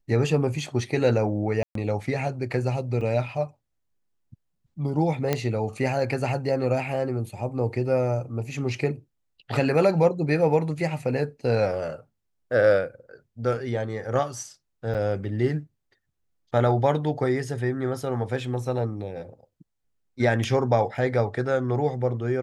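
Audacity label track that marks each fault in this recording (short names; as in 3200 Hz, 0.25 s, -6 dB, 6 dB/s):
1.630000	1.750000	gap 0.123 s
3.010000	3.010000	gap 3.3 ms
5.330000	5.330000	pop -9 dBFS
14.940000	14.950000	gap 7.5 ms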